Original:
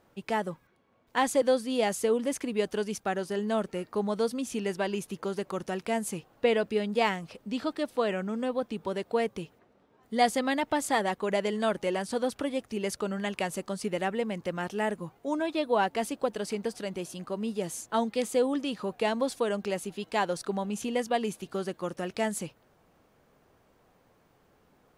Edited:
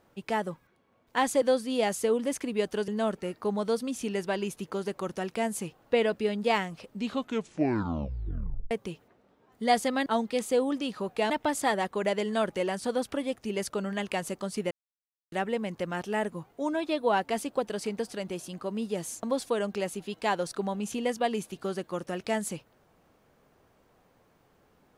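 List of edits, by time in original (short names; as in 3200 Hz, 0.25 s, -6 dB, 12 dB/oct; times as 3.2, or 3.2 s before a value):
2.88–3.39 cut
7.44 tape stop 1.78 s
13.98 insert silence 0.61 s
17.89–19.13 move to 10.57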